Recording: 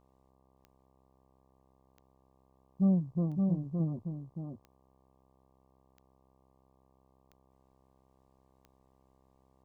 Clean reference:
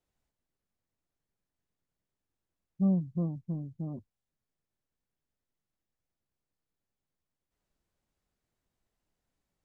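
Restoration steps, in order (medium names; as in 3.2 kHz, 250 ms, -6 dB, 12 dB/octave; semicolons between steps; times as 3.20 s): de-click; de-hum 65.7 Hz, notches 18; inverse comb 566 ms -3.5 dB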